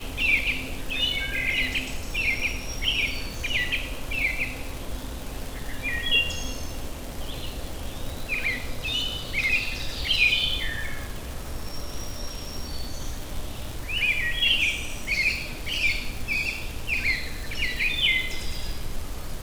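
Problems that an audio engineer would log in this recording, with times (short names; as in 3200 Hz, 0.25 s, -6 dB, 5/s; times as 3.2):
crackle 190/s -30 dBFS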